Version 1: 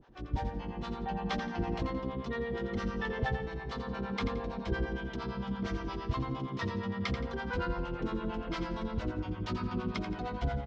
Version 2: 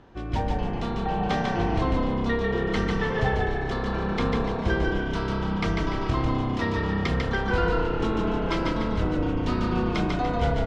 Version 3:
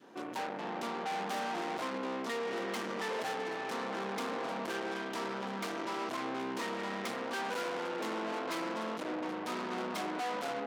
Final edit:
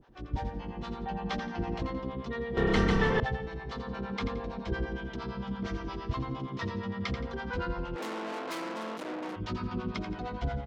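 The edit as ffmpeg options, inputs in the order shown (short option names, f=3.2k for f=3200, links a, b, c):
-filter_complex "[0:a]asplit=3[a][b][c];[a]atrim=end=2.572[d];[1:a]atrim=start=2.568:end=3.202[e];[b]atrim=start=3.198:end=7.962[f];[2:a]atrim=start=7.958:end=9.362[g];[c]atrim=start=9.358[h];[d][e]acrossfade=d=0.004:c1=hsin:c2=hsin[i];[i][f]acrossfade=d=0.004:c1=hsin:c2=hsin[j];[j][g]acrossfade=d=0.004:c1=hsin:c2=hsin[k];[k][h]acrossfade=d=0.004:c1=hsin:c2=hsin"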